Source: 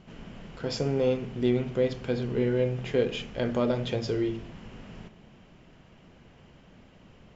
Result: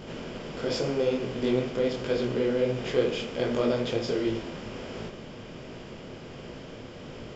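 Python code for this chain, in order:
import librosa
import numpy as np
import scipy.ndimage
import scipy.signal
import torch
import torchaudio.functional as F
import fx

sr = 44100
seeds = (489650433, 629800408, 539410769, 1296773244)

p1 = fx.bin_compress(x, sr, power=0.6)
p2 = fx.dynamic_eq(p1, sr, hz=110.0, q=0.93, threshold_db=-42.0, ratio=4.0, max_db=-5)
p3 = 10.0 ** (-22.0 / 20.0) * np.tanh(p2 / 10.0 ** (-22.0 / 20.0))
p4 = p2 + (p3 * librosa.db_to_amplitude(-9.0))
y = fx.detune_double(p4, sr, cents=48)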